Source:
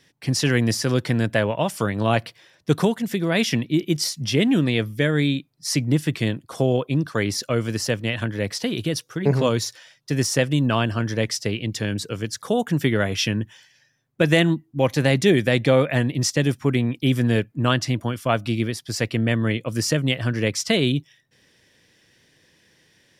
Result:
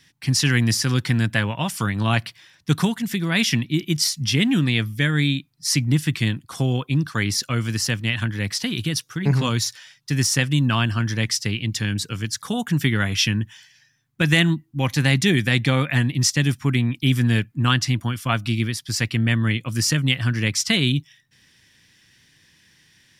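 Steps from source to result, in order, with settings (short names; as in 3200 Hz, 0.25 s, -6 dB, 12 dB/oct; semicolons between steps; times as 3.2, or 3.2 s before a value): bell 490 Hz -14.5 dB 1.3 oct; notch 630 Hz, Q 12; gain +4 dB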